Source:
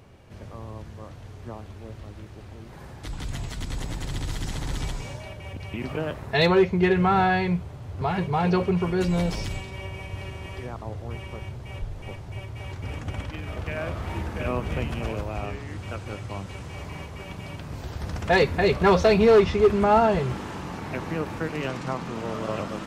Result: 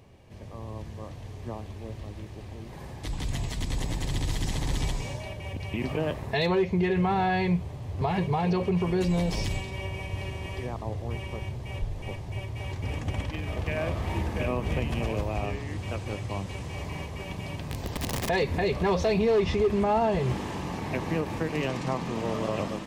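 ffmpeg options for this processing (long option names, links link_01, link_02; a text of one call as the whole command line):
ffmpeg -i in.wav -filter_complex "[0:a]asettb=1/sr,asplit=3[link_01][link_02][link_03];[link_01]atrim=end=17.664[link_04];[link_02]atrim=start=17.66:end=18.29,asetpts=PTS-STARTPTS,afade=type=in:duration=0.004:curve=qsin,afade=type=out:start_time=0.626:duration=0.004:curve=qsin,aeval=exprs='(mod(20*val(0)+1,2)-1)/20':channel_layout=same[link_05];[link_03]atrim=start=18.286[link_06];[link_04][link_05]acrossfade=duration=0.004:curve1=hsin:curve2=qsin[link_07];[link_07][link_06]acrossfade=duration=0.004:curve1=qsin:curve2=hsin,dynaudnorm=framelen=420:gausssize=3:maxgain=4.5dB,equalizer=frequency=1400:width=5.8:gain=-11.5,alimiter=limit=-14.5dB:level=0:latency=1:release=119,volume=-3dB" out.wav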